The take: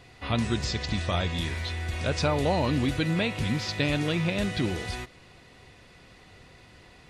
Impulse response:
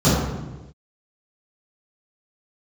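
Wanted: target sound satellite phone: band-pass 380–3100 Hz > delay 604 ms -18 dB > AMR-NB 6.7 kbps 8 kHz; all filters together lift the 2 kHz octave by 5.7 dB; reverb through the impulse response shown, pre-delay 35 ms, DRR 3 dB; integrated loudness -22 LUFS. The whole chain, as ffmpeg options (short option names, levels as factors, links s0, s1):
-filter_complex "[0:a]equalizer=f=2000:t=o:g=8,asplit=2[s0][s1];[1:a]atrim=start_sample=2205,adelay=35[s2];[s1][s2]afir=irnorm=-1:irlink=0,volume=0.0531[s3];[s0][s3]amix=inputs=2:normalize=0,highpass=380,lowpass=3100,aecho=1:1:604:0.126,volume=2.24" -ar 8000 -c:a libopencore_amrnb -b:a 6700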